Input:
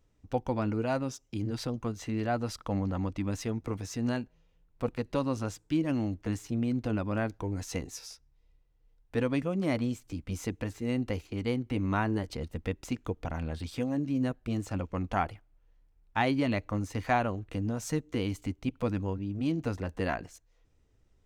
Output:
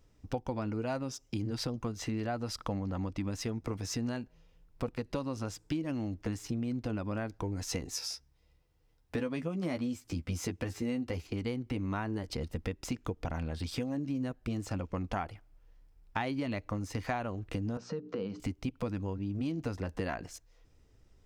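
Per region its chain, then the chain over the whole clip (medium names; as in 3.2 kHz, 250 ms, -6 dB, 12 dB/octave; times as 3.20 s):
7.94–11.27 s: high-pass 49 Hz + doubling 12 ms -6.5 dB
17.77–18.40 s: hum notches 60/120/180/240/300/360/420 Hz + compression 3:1, threshold -40 dBFS + cabinet simulation 170–4400 Hz, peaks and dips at 190 Hz +9 dB, 300 Hz -4 dB, 490 Hz +10 dB, 1.3 kHz +5 dB, 2.1 kHz -9 dB, 3.4 kHz -8 dB
whole clip: peaking EQ 5.1 kHz +5.5 dB 0.22 oct; compression, threshold -36 dBFS; trim +4.5 dB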